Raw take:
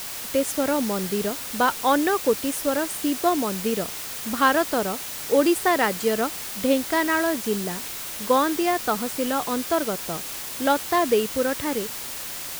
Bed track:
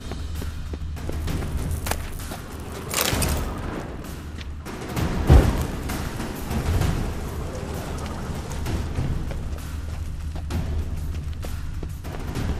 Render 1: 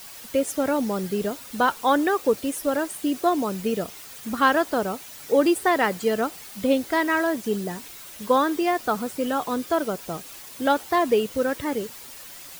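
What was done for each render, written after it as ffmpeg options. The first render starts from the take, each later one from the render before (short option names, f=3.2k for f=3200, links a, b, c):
-af "afftdn=nr=10:nf=-34"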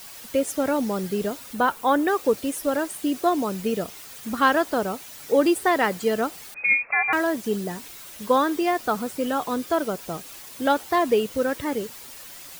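-filter_complex "[0:a]asettb=1/sr,asplit=3[a][b][c];[a]atrim=end=1.534[d];[b]atrim=start=1.53:end=2.08,asetpts=PTS-STARTPTS,afade=t=in:d=0.004:c=qsin,afade=t=out:st=0.546:d=0.004:c=qsin,equalizer=f=5k:t=o:w=1.8:g=-5.5[e];[c]atrim=start=2.076[f];[d][e]acrossfade=d=0.004:c1=hsin:c2=qsin[g];[g][f]acrossfade=d=0.004:c1=qsin:c2=hsin,asettb=1/sr,asplit=3[h][i][j];[h]atrim=end=6.544[k];[i]atrim=start=6.54:end=7.13,asetpts=PTS-STARTPTS,afade=t=in:d=0.004:c=qsin,afade=t=out:st=0.586:d=0.004:c=qsin,lowpass=f=2.3k:t=q:w=0.5098,lowpass=f=2.3k:t=q:w=0.6013,lowpass=f=2.3k:t=q:w=0.9,lowpass=f=2.3k:t=q:w=2.563,afreqshift=-2700[l];[j]atrim=start=7.126[m];[k][l]acrossfade=d=0.004:c1=hsin:c2=qsin[n];[n][m]acrossfade=d=0.004:c1=qsin:c2=hsin"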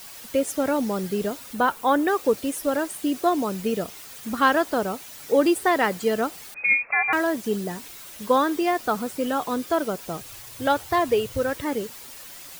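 -filter_complex "[0:a]asettb=1/sr,asplit=3[a][b][c];[a]atrim=end=10.214[d];[b]atrim=start=10.21:end=11.57,asetpts=PTS-STARTPTS,afade=t=in:d=0.004:c=qsin,afade=t=out:st=1.356:d=0.004:c=qsin,lowshelf=f=150:t=q:w=3:g=8[e];[c]atrim=start=11.566[f];[d][e]acrossfade=d=0.004:c1=hsin:c2=qsin[g];[g][f]acrossfade=d=0.004:c1=qsin:c2=hsin"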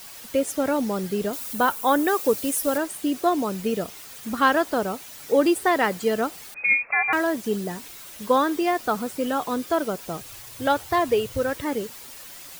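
-filter_complex "[0:a]asettb=1/sr,asplit=3[a][b][c];[a]atrim=end=1.334[d];[b]atrim=start=1.33:end=2.78,asetpts=PTS-STARTPTS,afade=t=in:d=0.004:c=qsin,afade=t=out:st=1.446:d=0.004:c=qsin,highshelf=f=6.2k:g=10[e];[c]atrim=start=2.776[f];[d][e]acrossfade=d=0.004:c1=hsin:c2=qsin[g];[g][f]acrossfade=d=0.004:c1=qsin:c2=hsin"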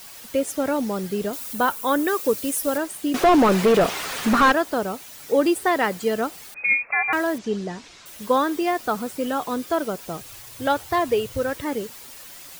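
-filter_complex "[0:a]asettb=1/sr,asplit=3[a][b][c];[a]atrim=end=1.774[d];[b]atrim=start=1.77:end=2.51,asetpts=PTS-STARTPTS,afade=t=in:d=0.004:c=qsin,afade=t=out:st=0.736:d=0.004:c=qsin,equalizer=f=770:t=o:w=0.24:g=-8[e];[c]atrim=start=2.506[f];[d][e]acrossfade=d=0.004:c1=hsin:c2=qsin[g];[g][f]acrossfade=d=0.004:c1=qsin:c2=hsin,asettb=1/sr,asplit=3[h][i][j];[h]atrim=end=3.144[k];[i]atrim=start=3.14:end=4.52,asetpts=PTS-STARTPTS,afade=t=in:d=0.004:c=qsin,afade=t=out:st=1.376:d=0.004:c=qsin,asplit=2[l][m];[m]highpass=f=720:p=1,volume=32dB,asoftclip=type=tanh:threshold=-7dB[n];[l][n]amix=inputs=2:normalize=0,lowpass=f=1.4k:p=1,volume=-6dB[o];[j]atrim=start=4.516[p];[k][o]acrossfade=d=0.004:c1=hsin:c2=qsin[q];[q][p]acrossfade=d=0.004:c1=qsin:c2=hsin,asettb=1/sr,asplit=3[r][s][t];[r]atrim=end=7.384[u];[s]atrim=start=7.38:end=8.06,asetpts=PTS-STARTPTS,afade=t=in:d=0.004:c=qsin,afade=t=out:st=0.676:d=0.004:c=qsin,lowpass=f=6.5k:w=0.5412,lowpass=f=6.5k:w=1.3066[v];[t]atrim=start=8.056[w];[u][v]acrossfade=d=0.004:c1=hsin:c2=qsin[x];[x][w]acrossfade=d=0.004:c1=qsin:c2=hsin"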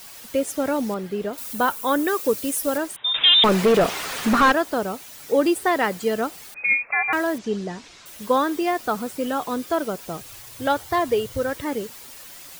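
-filter_complex "[0:a]asettb=1/sr,asplit=3[a][b][c];[a]atrim=end=0.944[d];[b]atrim=start=0.94:end=1.38,asetpts=PTS-STARTPTS,afade=t=in:d=0.004:c=qsin,afade=t=out:st=0.436:d=0.004:c=qsin,bass=f=250:g=-4,treble=f=4k:g=-11[e];[c]atrim=start=1.376[f];[d][e]acrossfade=d=0.004:c1=hsin:c2=qsin[g];[g][f]acrossfade=d=0.004:c1=qsin:c2=hsin,asettb=1/sr,asplit=3[h][i][j];[h]atrim=end=2.964[k];[i]atrim=start=2.96:end=3.44,asetpts=PTS-STARTPTS,afade=t=in:d=0.004:c=qsin,afade=t=out:st=0.476:d=0.004:c=qsin,lowpass=f=3.3k:t=q:w=0.5098,lowpass=f=3.3k:t=q:w=0.6013,lowpass=f=3.3k:t=q:w=0.9,lowpass=f=3.3k:t=q:w=2.563,afreqshift=-3900[l];[j]atrim=start=3.436[m];[k][l]acrossfade=d=0.004:c1=hsin:c2=qsin[n];[n][m]acrossfade=d=0.004:c1=qsin:c2=hsin,asettb=1/sr,asplit=3[o][p][q];[o]atrim=end=10.754[r];[p]atrim=start=10.75:end=11.56,asetpts=PTS-STARTPTS,afade=t=in:d=0.004:c=qsin,afade=t=out:st=0.806:d=0.004:c=qsin,bandreject=f=2.6k:w=14[s];[q]atrim=start=11.556[t];[r][s]acrossfade=d=0.004:c1=hsin:c2=qsin[u];[u][t]acrossfade=d=0.004:c1=qsin:c2=hsin"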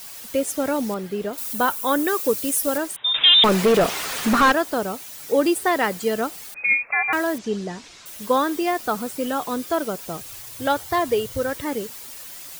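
-af "highshelf=f=5k:g=4.5"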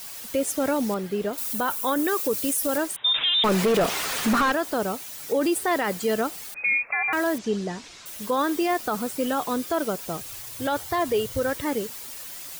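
-af "alimiter=limit=-15.5dB:level=0:latency=1:release=25"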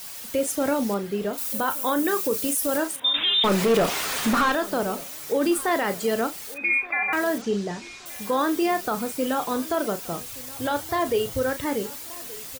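-filter_complex "[0:a]asplit=2[a][b];[b]adelay=35,volume=-10dB[c];[a][c]amix=inputs=2:normalize=0,asplit=2[d][e];[e]adelay=1175,lowpass=f=2.9k:p=1,volume=-20dB,asplit=2[f][g];[g]adelay=1175,lowpass=f=2.9k:p=1,volume=0.4,asplit=2[h][i];[i]adelay=1175,lowpass=f=2.9k:p=1,volume=0.4[j];[d][f][h][j]amix=inputs=4:normalize=0"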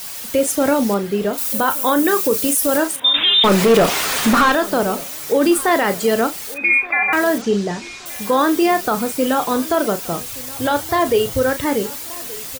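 -af "volume=7.5dB"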